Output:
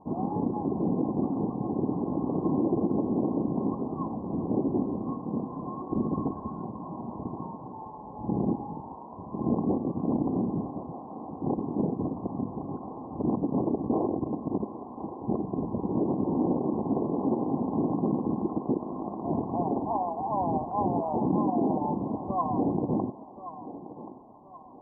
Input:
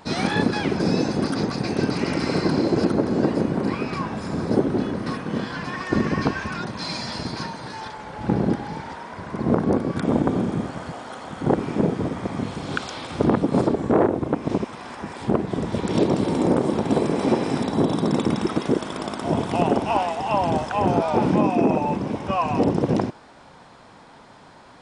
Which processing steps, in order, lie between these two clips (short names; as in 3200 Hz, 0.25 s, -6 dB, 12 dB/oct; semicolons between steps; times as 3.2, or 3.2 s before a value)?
limiter -12 dBFS, peak gain reduction 7.5 dB; rippled Chebyshev low-pass 1100 Hz, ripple 6 dB; on a send: thinning echo 1.078 s, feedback 40%, high-pass 310 Hz, level -12 dB; on the sum: gain -3 dB